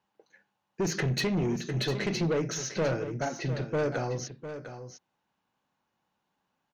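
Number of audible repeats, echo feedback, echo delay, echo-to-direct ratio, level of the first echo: 1, no steady repeat, 0.703 s, -11.0 dB, -11.0 dB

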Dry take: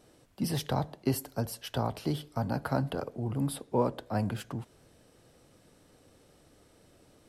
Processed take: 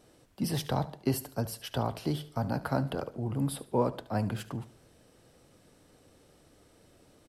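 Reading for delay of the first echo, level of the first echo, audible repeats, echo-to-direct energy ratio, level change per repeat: 73 ms, -17.0 dB, 2, -16.5 dB, -9.0 dB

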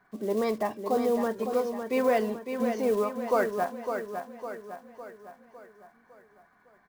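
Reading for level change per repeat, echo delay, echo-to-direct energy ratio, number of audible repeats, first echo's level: -6.0 dB, 0.556 s, -5.5 dB, 5, -7.0 dB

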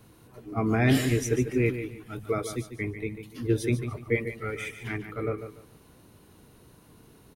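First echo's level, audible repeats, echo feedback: -10.0 dB, 3, 26%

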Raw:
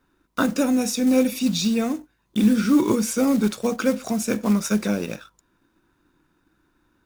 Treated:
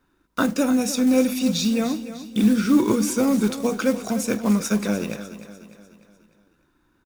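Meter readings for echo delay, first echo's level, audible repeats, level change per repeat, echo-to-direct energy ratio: 0.299 s, -13.0 dB, 4, -6.5 dB, -12.0 dB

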